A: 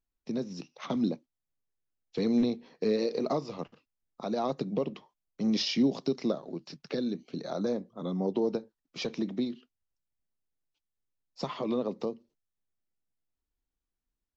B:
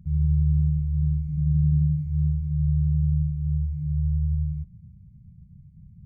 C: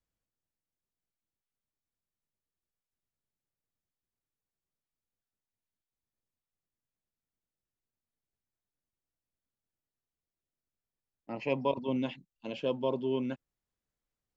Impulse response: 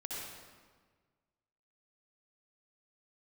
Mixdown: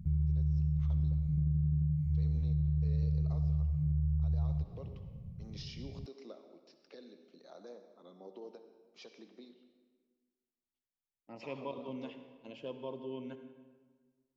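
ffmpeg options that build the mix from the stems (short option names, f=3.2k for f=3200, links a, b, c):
-filter_complex "[0:a]highpass=370,volume=-19.5dB,asplit=2[a][b];[b]volume=-5.5dB[c];[1:a]acompressor=threshold=-24dB:ratio=6,volume=2dB[d];[2:a]volume=-12.5dB,asplit=2[e][f];[f]volume=-6.5dB[g];[3:a]atrim=start_sample=2205[h];[c][g]amix=inputs=2:normalize=0[i];[i][h]afir=irnorm=-1:irlink=0[j];[a][d][e][j]amix=inputs=4:normalize=0,acompressor=threshold=-37dB:ratio=1.5"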